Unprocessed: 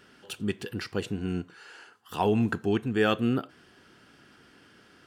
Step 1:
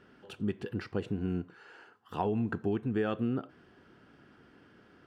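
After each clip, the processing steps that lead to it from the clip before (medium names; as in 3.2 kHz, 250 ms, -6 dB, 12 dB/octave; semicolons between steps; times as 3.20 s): low-pass 1.1 kHz 6 dB/octave; compression, threshold -27 dBFS, peak gain reduction 7 dB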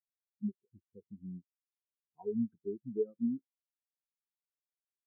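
spectral contrast expander 4:1; trim -5.5 dB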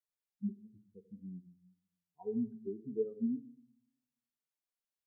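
on a send at -11 dB: reverberation RT60 0.60 s, pre-delay 4 ms; on the sum: vibrato 1.8 Hz 49 cents; trim -2 dB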